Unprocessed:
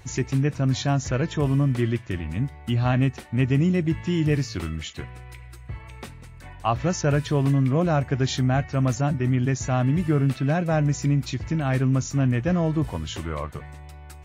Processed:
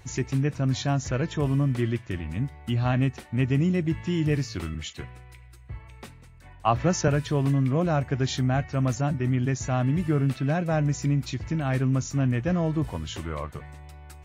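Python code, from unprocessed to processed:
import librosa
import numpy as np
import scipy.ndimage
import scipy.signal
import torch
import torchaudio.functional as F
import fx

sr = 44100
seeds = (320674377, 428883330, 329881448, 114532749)

y = fx.band_widen(x, sr, depth_pct=40, at=(4.74, 7.08))
y = y * librosa.db_to_amplitude(-2.5)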